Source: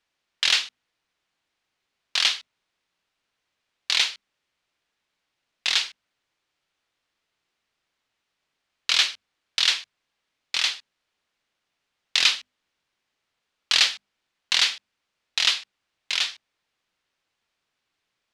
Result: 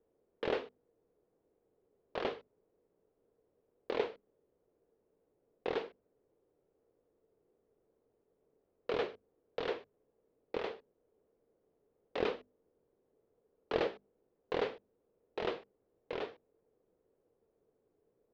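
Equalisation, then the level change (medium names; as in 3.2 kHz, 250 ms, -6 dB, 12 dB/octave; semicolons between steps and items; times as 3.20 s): resonant low-pass 450 Hz, resonance Q 4.9; +7.0 dB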